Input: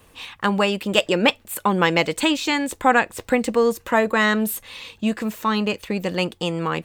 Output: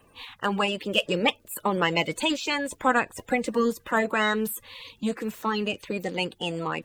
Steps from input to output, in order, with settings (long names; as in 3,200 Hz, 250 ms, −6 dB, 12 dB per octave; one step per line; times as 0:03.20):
spectral magnitudes quantised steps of 30 dB
level −5 dB